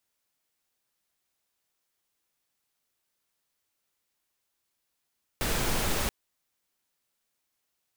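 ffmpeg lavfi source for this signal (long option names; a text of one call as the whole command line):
ffmpeg -f lavfi -i "anoisesrc=color=pink:amplitude=0.204:duration=0.68:sample_rate=44100:seed=1" out.wav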